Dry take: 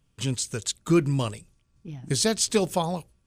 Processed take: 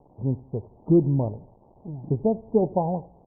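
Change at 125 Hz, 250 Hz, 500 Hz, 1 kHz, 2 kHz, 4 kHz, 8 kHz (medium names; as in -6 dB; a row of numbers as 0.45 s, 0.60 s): +2.5 dB, +2.5 dB, +2.5 dB, +0.5 dB, under -40 dB, under -40 dB, under -40 dB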